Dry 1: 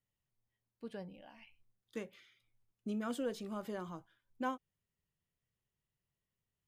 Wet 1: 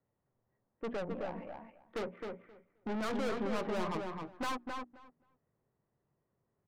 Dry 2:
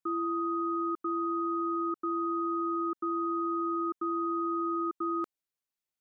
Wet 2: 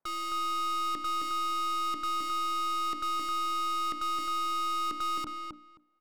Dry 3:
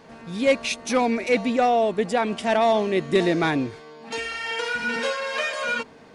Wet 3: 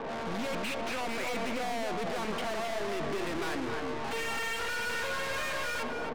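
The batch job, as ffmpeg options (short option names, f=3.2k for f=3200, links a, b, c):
-filter_complex "[0:a]bandreject=f=60:t=h:w=6,bandreject=f=120:t=h:w=6,bandreject=f=180:t=h:w=6,bandreject=f=240:t=h:w=6,bandreject=f=300:t=h:w=6,acrossover=split=240|2700[a][b][c];[c]aeval=exprs='sgn(val(0))*max(abs(val(0))-0.00112,0)':c=same[d];[a][b][d]amix=inputs=3:normalize=0,equalizer=f=3.2k:w=0.52:g=4,alimiter=limit=-16.5dB:level=0:latency=1:release=296,adynamicsmooth=sensitivity=7.5:basefreq=650,asplit=2[e][f];[f]highpass=f=720:p=1,volume=29dB,asoftclip=type=tanh:threshold=-16.5dB[g];[e][g]amix=inputs=2:normalize=0,lowpass=f=1.9k:p=1,volume=-6dB,acrossover=split=2800[h][i];[i]acompressor=threshold=-39dB:ratio=4:attack=1:release=60[j];[h][j]amix=inputs=2:normalize=0,aeval=exprs='(tanh(63.1*val(0)+0.35)-tanh(0.35))/63.1':c=same,asplit=2[k][l];[l]adelay=264,lowpass=f=3k:p=1,volume=-4dB,asplit=2[m][n];[n]adelay=264,lowpass=f=3k:p=1,volume=0.15,asplit=2[o][p];[p]adelay=264,lowpass=f=3k:p=1,volume=0.15[q];[m][o][q]amix=inputs=3:normalize=0[r];[k][r]amix=inputs=2:normalize=0,volume=1.5dB"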